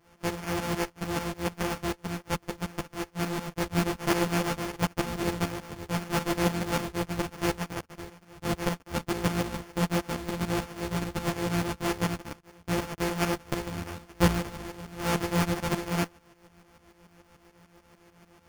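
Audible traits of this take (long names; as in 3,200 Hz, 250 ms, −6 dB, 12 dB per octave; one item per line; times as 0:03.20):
a buzz of ramps at a fixed pitch in blocks of 256 samples
tremolo saw up 6.8 Hz, depth 80%
aliases and images of a low sample rate 3,900 Hz, jitter 0%
a shimmering, thickened sound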